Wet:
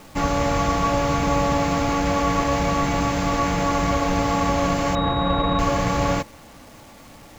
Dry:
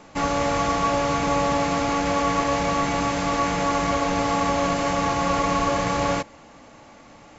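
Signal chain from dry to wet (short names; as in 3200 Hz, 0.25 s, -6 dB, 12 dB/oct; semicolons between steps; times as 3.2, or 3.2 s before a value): low shelf 150 Hz +9.5 dB; bit-crush 8-bit; 4.95–5.59 pulse-width modulation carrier 3800 Hz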